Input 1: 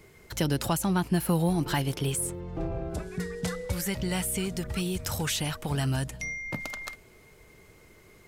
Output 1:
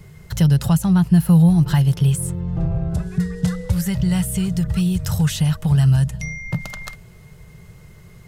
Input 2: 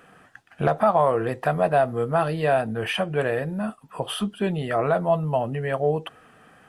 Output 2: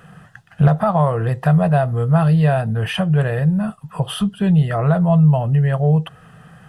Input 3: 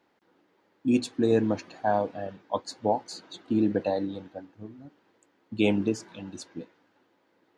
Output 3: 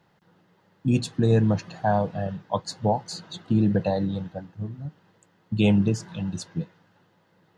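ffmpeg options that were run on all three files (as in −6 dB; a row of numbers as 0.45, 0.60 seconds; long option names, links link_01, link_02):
-filter_complex "[0:a]lowshelf=frequency=210:width_type=q:width=3:gain=8.5,bandreject=frequency=2300:width=9.5,asplit=2[link_01][link_02];[link_02]acompressor=threshold=-28dB:ratio=6,volume=-2.5dB[link_03];[link_01][link_03]amix=inputs=2:normalize=0"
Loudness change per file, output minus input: +11.5, +7.0, +2.5 LU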